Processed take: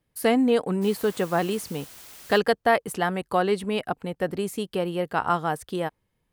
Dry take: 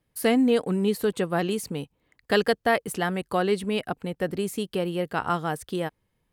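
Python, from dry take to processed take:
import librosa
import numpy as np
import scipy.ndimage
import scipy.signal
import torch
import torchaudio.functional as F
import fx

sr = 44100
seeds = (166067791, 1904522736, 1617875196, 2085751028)

y = fx.dmg_noise_colour(x, sr, seeds[0], colour='white', level_db=-45.0, at=(0.81, 2.37), fade=0.02)
y = fx.dynamic_eq(y, sr, hz=890.0, q=0.96, threshold_db=-39.0, ratio=4.0, max_db=5)
y = F.gain(torch.from_numpy(y), -1.0).numpy()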